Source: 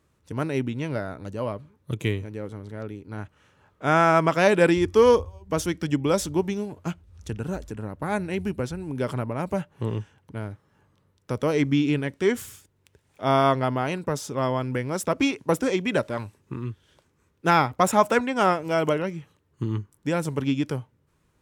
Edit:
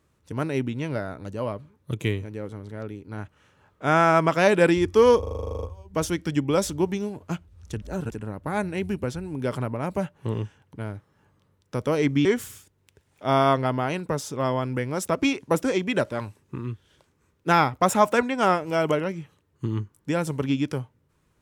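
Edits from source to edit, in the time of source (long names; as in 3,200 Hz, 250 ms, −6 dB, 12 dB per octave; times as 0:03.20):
0:05.19: stutter 0.04 s, 12 plays
0:07.38–0:07.67: reverse
0:11.81–0:12.23: remove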